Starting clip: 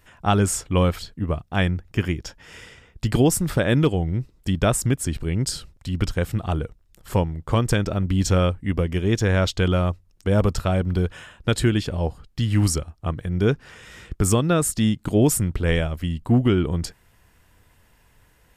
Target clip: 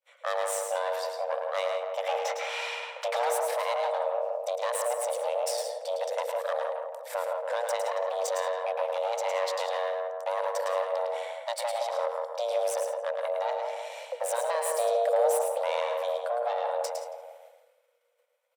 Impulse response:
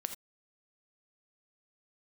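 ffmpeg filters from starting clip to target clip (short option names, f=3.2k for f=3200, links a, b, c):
-filter_complex "[0:a]acompressor=threshold=-23dB:ratio=6,asplit=3[a][b][c];[a]afade=t=out:st=2.05:d=0.02[d];[b]asplit=2[e][f];[f]highpass=f=720:p=1,volume=26dB,asoftclip=type=tanh:threshold=-16dB[g];[e][g]amix=inputs=2:normalize=0,lowpass=f=1.3k:p=1,volume=-6dB,afade=t=in:st=2.05:d=0.02,afade=t=out:st=3.29:d=0.02[h];[c]afade=t=in:st=3.29:d=0.02[i];[d][h][i]amix=inputs=3:normalize=0,asplit=2[j][k];[k]adelay=167,lowpass=f=940:p=1,volume=-5.5dB,asplit=2[l][m];[m]adelay=167,lowpass=f=940:p=1,volume=0.52,asplit=2[n][o];[o]adelay=167,lowpass=f=940:p=1,volume=0.52,asplit=2[p][q];[q]adelay=167,lowpass=f=940:p=1,volume=0.52,asplit=2[r][s];[s]adelay=167,lowpass=f=940:p=1,volume=0.52,asplit=2[t][u];[u]adelay=167,lowpass=f=940:p=1,volume=0.52,asplit=2[v][w];[w]adelay=167,lowpass=f=940:p=1,volume=0.52[x];[j][l][n][p][r][t][v][x]amix=inputs=8:normalize=0,aeval=exprs='(tanh(20*val(0)+0.6)-tanh(0.6))/20':c=same,asettb=1/sr,asplit=3[y][z][aa];[y]atrim=end=11.144[ab];[z]atrim=start=11.14:end=11.83,asetpts=PTS-STARTPTS,afade=t=in:d=0.004:c=qsin,afade=t=out:st=0.686:d=0.004:c=qsin,highpass=44[ac];[aa]atrim=start=11.826[ad];[ab][ac]acrossfade=d=0.004:c1=hsin:c2=qsin[ae];[ae][ad]acrossfade=d=0.004:c1=qsin:c2=hsin,asettb=1/sr,asplit=3[af][ag][ah];[af]atrim=end=14.374[ai];[ag]atrim=start=14.37:end=15.32,asetpts=PTS-STARTPTS,afade=t=in:d=0.004:c=qsin,afade=t=out:st=0.946:d=0.004:c=qsin,asubboost=boost=10.5:cutoff=190[aj];[ah]atrim=start=15.316[ak];[ai][aj]acrossfade=d=0.004:c1=hsin:c2=qsin[al];[al][ak]acrossfade=d=0.004:c1=qsin:c2=hsin,agate=range=-33dB:threshold=-47dB:ratio=3:detection=peak,afreqshift=470,asplit=2[am][an];[1:a]atrim=start_sample=2205,afade=t=out:st=0.13:d=0.01,atrim=end_sample=6174,adelay=108[ao];[an][ao]afir=irnorm=-1:irlink=0,volume=-5dB[ap];[am][ap]amix=inputs=2:normalize=0"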